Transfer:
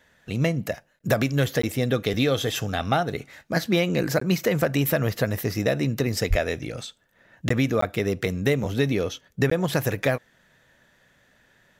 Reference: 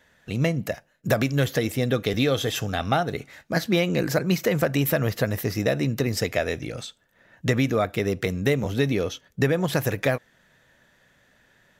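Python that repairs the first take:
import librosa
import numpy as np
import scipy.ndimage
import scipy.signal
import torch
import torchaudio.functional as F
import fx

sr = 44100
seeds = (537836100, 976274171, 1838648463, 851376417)

y = fx.highpass(x, sr, hz=140.0, slope=24, at=(6.29, 6.41), fade=0.02)
y = fx.fix_interpolate(y, sr, at_s=(0.99, 1.62, 4.2, 7.49, 7.81, 9.5), length_ms=14.0)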